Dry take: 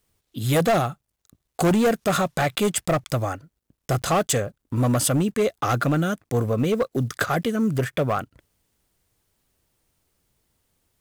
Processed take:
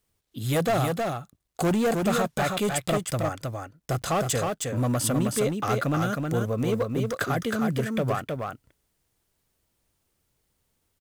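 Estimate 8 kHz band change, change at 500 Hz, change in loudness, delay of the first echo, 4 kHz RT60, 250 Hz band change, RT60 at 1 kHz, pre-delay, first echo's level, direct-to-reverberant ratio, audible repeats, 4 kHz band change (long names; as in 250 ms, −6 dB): −3.0 dB, −3.0 dB, −3.5 dB, 315 ms, no reverb audible, −3.0 dB, no reverb audible, no reverb audible, −4.0 dB, no reverb audible, 1, −3.0 dB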